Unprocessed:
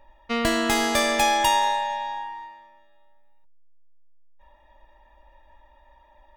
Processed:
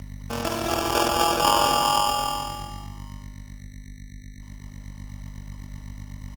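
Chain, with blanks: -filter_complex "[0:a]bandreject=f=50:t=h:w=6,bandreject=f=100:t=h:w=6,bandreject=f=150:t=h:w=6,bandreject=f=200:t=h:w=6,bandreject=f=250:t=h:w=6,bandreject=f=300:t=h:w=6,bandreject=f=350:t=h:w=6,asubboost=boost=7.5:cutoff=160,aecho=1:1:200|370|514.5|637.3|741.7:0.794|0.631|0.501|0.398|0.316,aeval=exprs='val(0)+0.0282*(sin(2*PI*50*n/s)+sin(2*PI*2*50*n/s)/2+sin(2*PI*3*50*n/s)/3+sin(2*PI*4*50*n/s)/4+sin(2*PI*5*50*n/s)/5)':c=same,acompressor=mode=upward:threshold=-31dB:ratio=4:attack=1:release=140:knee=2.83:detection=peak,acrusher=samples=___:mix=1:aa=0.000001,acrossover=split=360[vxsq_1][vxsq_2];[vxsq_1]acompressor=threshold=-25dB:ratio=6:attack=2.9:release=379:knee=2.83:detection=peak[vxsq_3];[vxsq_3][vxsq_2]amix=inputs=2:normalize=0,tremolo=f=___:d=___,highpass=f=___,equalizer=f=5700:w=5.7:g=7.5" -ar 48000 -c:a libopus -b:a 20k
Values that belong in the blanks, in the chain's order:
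22, 42, 0.519, 46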